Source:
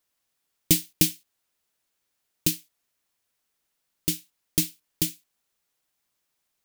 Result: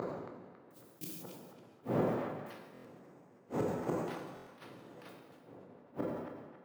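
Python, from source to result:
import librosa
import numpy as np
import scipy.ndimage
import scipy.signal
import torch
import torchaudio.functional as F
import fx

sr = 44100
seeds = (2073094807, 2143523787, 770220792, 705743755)

y = fx.dmg_wind(x, sr, seeds[0], corner_hz=450.0, level_db=-30.0)
y = fx.over_compress(y, sr, threshold_db=-27.0, ratio=-0.5)
y = fx.gate_flip(y, sr, shuts_db=-32.0, range_db=-40)
y = fx.high_shelf(y, sr, hz=9500.0, db=12.0)
y = fx.echo_banded(y, sr, ms=275, feedback_pct=52, hz=2000.0, wet_db=-5.5)
y = fx.resample_bad(y, sr, factor=6, down='none', up='hold', at=(2.5, 5.09))
y = scipy.signal.sosfilt(scipy.signal.butter(4, 130.0, 'highpass', fs=sr, output='sos'), y)
y = fx.high_shelf(y, sr, hz=2800.0, db=-12.0)
y = fx.rev_gated(y, sr, seeds[1], gate_ms=500, shape='falling', drr_db=1.5)
y = fx.buffer_glitch(y, sr, at_s=(2.73, 4.35), block=1024, repeats=4)
y = fx.sustainer(y, sr, db_per_s=38.0)
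y = y * 10.0 ** (12.0 / 20.0)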